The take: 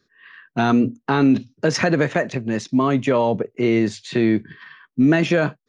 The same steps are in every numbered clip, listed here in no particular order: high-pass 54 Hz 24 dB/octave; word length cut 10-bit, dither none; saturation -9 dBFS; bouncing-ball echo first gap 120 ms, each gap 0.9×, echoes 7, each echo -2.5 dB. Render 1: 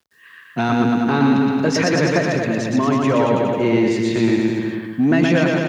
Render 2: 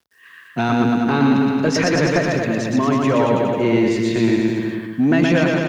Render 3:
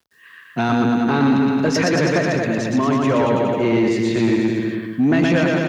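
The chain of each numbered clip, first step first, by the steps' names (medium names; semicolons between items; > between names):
saturation > bouncing-ball echo > word length cut > high-pass; word length cut > high-pass > saturation > bouncing-ball echo; bouncing-ball echo > word length cut > saturation > high-pass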